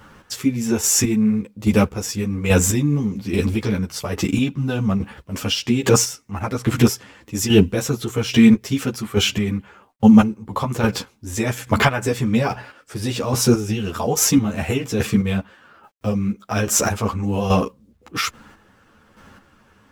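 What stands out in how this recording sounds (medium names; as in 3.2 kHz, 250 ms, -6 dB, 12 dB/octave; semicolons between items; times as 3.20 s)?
a quantiser's noise floor 12-bit, dither none; chopped level 1.2 Hz, depth 60%, duty 25%; a shimmering, thickened sound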